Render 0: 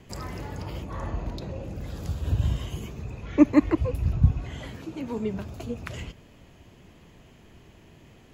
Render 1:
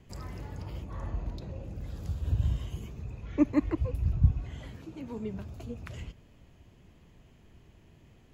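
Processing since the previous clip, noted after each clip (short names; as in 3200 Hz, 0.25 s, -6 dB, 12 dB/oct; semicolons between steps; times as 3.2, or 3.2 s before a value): low shelf 140 Hz +8 dB; gain -9 dB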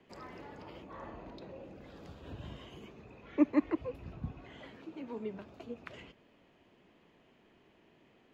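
three-band isolator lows -23 dB, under 220 Hz, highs -17 dB, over 4300 Hz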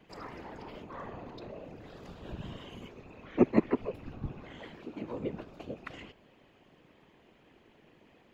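whisperiser; gain +3.5 dB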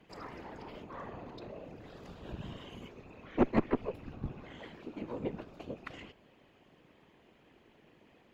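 tube stage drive 21 dB, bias 0.75; gain +3 dB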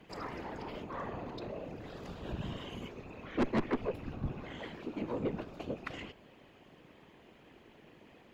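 soft clip -29.5 dBFS, distortion -5 dB; gain +4.5 dB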